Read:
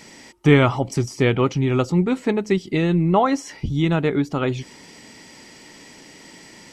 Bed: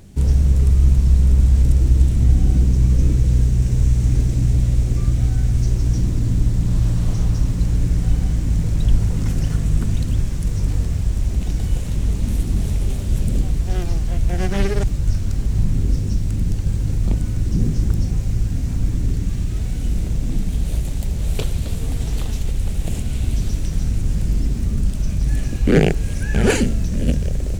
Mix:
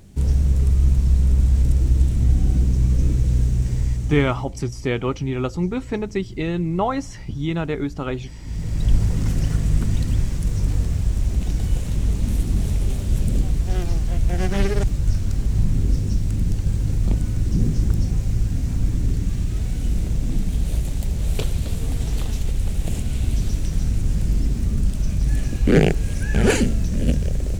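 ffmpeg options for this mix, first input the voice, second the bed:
-filter_complex "[0:a]adelay=3650,volume=-4.5dB[a];[1:a]volume=15dB,afade=t=out:st=3.54:d=0.99:silence=0.158489,afade=t=in:st=8.39:d=0.57:silence=0.125893[b];[a][b]amix=inputs=2:normalize=0"

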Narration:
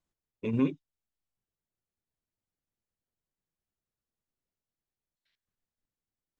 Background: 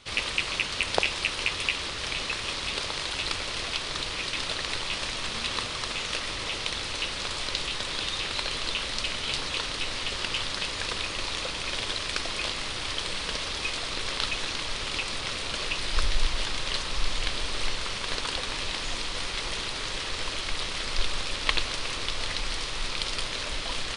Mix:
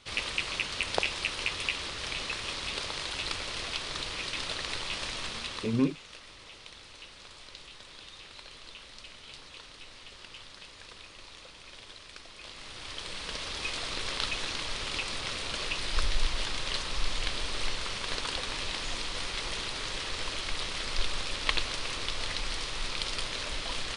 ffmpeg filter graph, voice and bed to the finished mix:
-filter_complex "[0:a]adelay=5200,volume=0.5dB[a];[1:a]volume=10.5dB,afade=t=out:st=5.21:d=0.68:silence=0.211349,afade=t=in:st=12.37:d=1.46:silence=0.188365[b];[a][b]amix=inputs=2:normalize=0"

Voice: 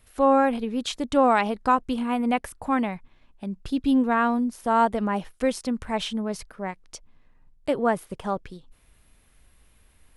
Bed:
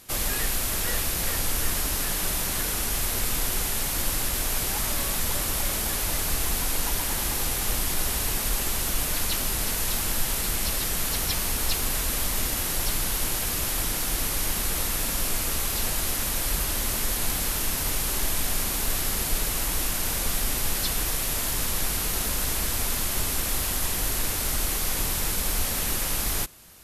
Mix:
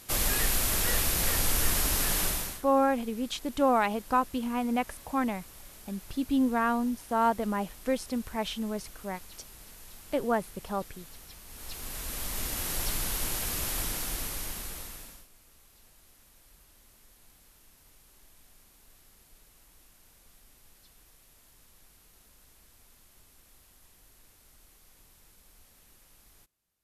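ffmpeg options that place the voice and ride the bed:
-filter_complex "[0:a]adelay=2450,volume=-5dB[a];[1:a]volume=17.5dB,afade=t=out:st=2.2:d=0.42:silence=0.0749894,afade=t=in:st=11.46:d=1.29:silence=0.125893,afade=t=out:st=13.79:d=1.48:silence=0.0421697[b];[a][b]amix=inputs=2:normalize=0"

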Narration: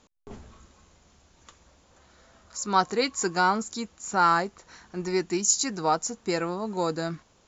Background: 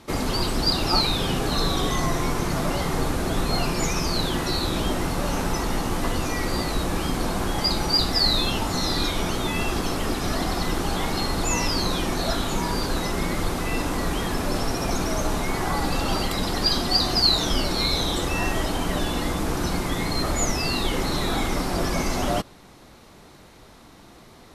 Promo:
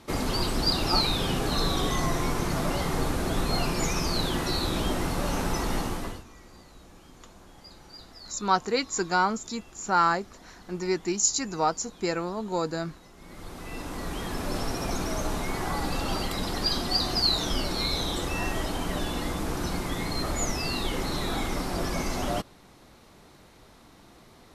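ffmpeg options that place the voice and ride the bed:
-filter_complex "[0:a]adelay=5750,volume=-1dB[a];[1:a]volume=18.5dB,afade=t=out:st=5.79:d=0.45:silence=0.0668344,afade=t=in:st=13.17:d=1.42:silence=0.0841395[b];[a][b]amix=inputs=2:normalize=0"

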